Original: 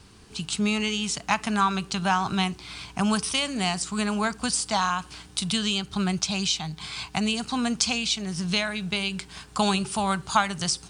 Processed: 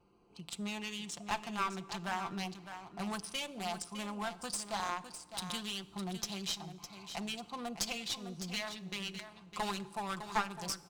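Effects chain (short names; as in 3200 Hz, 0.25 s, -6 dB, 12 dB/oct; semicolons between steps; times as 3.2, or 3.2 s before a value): Wiener smoothing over 25 samples; tone controls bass -13 dB, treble -1 dB; notch 4300 Hz, Q 26; comb 5.8 ms, depth 56%; vibrato 0.95 Hz 16 cents; one-sided clip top -26.5 dBFS; echo 0.607 s -10 dB; plate-style reverb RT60 1.4 s, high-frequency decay 0.9×, DRR 18 dB; gain -8.5 dB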